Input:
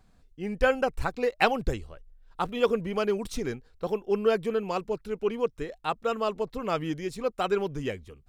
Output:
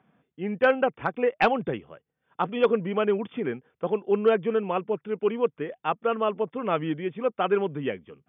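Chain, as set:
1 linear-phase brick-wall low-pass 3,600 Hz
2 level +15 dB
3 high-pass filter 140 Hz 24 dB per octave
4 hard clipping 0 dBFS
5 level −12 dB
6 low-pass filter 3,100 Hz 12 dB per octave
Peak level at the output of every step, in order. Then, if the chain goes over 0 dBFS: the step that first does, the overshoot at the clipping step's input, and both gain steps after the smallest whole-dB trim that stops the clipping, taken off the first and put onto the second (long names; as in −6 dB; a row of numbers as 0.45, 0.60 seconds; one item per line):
−7.5, +7.5, +9.5, 0.0, −12.0, −11.5 dBFS
step 2, 9.5 dB
step 2 +5 dB, step 5 −2 dB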